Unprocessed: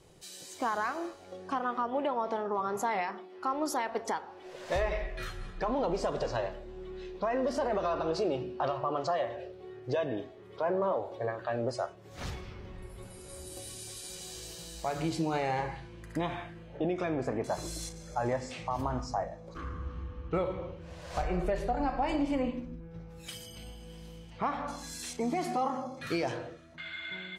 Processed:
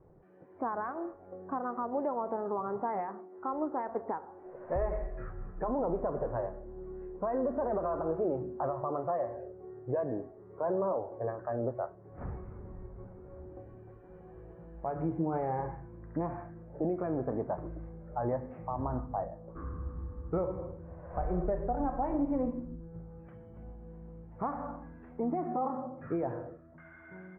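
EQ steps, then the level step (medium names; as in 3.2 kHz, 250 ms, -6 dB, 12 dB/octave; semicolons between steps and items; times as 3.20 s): Bessel low-pass 920 Hz, order 8; 0.0 dB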